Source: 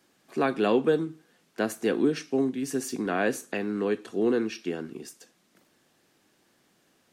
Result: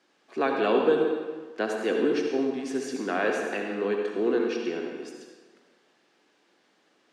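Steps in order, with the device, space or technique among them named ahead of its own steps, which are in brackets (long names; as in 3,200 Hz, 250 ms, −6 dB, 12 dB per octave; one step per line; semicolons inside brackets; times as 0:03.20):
supermarket ceiling speaker (band-pass filter 290–5,100 Hz; convolution reverb RT60 1.4 s, pre-delay 62 ms, DRR 1.5 dB)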